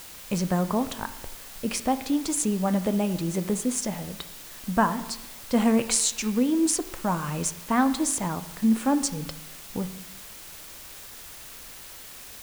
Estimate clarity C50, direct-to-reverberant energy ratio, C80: 13.0 dB, 10.0 dB, 15.0 dB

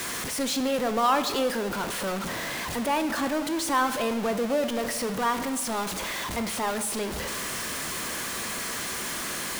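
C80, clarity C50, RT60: 12.5 dB, 11.0 dB, 1.3 s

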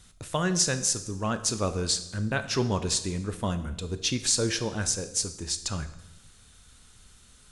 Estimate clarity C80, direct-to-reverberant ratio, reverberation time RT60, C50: 15.0 dB, 10.0 dB, 0.90 s, 12.5 dB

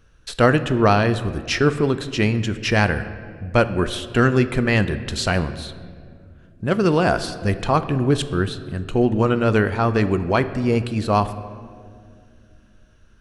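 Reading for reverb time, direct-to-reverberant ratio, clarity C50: 2.2 s, 11.0 dB, 13.0 dB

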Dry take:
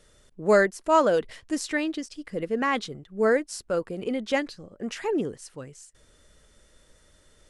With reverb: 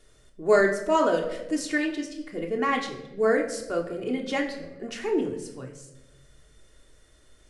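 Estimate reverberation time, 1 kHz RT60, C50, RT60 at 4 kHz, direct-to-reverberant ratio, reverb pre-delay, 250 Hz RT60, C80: 1.0 s, 0.85 s, 8.5 dB, 0.65 s, 0.5 dB, 3 ms, 1.3 s, 11.0 dB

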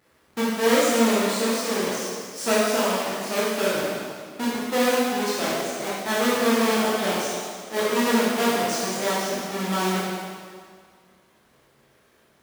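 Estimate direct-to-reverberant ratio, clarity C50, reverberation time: −8.5 dB, −2.5 dB, 1.9 s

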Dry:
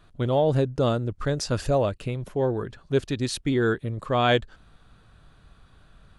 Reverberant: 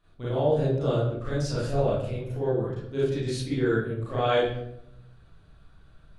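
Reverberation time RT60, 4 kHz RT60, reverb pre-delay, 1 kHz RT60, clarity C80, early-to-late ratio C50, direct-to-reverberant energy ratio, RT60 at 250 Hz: 0.75 s, 0.50 s, 33 ms, 0.60 s, 4.5 dB, −1.5 dB, −10.0 dB, 1.1 s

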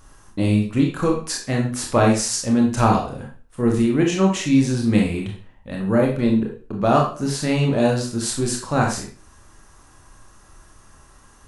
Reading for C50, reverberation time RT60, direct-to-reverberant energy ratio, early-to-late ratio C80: 5.0 dB, 0.40 s, −0.5 dB, 10.0 dB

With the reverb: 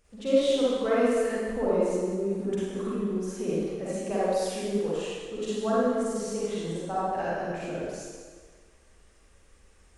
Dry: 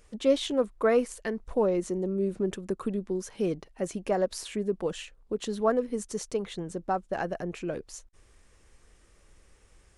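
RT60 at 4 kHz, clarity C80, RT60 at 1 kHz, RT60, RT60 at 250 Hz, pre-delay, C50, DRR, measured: 1.4 s, −2.0 dB, 1.7 s, 1.7 s, 1.5 s, 39 ms, −7.0 dB, −9.5 dB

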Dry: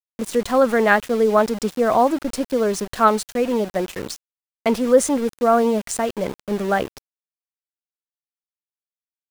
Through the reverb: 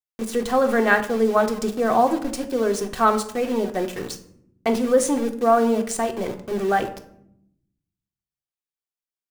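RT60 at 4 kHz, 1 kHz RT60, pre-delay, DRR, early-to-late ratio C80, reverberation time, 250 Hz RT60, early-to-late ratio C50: 0.40 s, 0.60 s, 3 ms, 4.0 dB, 16.5 dB, 0.70 s, 1.3 s, 12.5 dB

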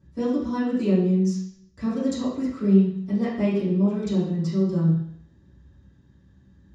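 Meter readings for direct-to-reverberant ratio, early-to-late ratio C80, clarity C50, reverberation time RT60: −17.0 dB, 5.0 dB, 0.5 dB, 0.65 s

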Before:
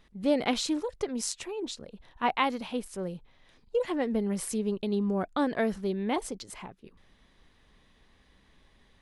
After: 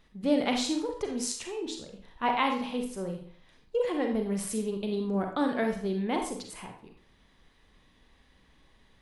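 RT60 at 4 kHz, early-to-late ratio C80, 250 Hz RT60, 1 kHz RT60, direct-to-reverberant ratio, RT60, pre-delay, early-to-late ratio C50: 0.45 s, 10.5 dB, 0.45 s, 0.50 s, 3.0 dB, 0.50 s, 34 ms, 6.0 dB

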